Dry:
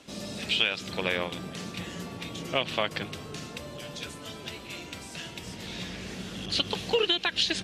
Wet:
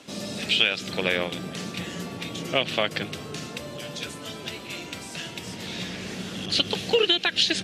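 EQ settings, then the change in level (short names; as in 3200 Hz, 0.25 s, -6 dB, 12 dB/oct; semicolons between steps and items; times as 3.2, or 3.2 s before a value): HPF 100 Hz 12 dB/oct; dynamic EQ 1000 Hz, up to -6 dB, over -50 dBFS, Q 2.8; +4.5 dB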